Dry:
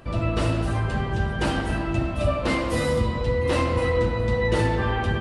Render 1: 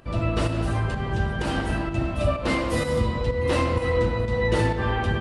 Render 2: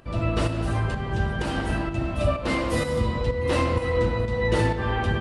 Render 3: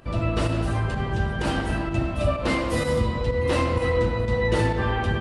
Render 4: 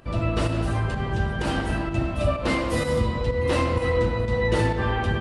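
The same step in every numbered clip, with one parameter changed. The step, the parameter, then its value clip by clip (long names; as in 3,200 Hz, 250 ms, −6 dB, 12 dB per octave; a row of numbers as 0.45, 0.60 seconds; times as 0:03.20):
fake sidechain pumping, release: 197, 361, 88, 133 milliseconds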